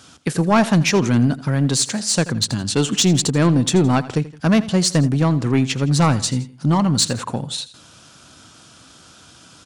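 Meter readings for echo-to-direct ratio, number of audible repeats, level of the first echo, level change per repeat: −16.0 dB, 2, −17.0 dB, −6.5 dB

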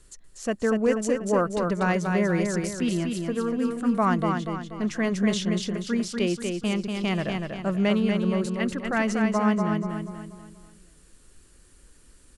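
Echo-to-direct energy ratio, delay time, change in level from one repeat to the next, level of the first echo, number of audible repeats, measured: −3.5 dB, 241 ms, −7.5 dB, −4.5 dB, 5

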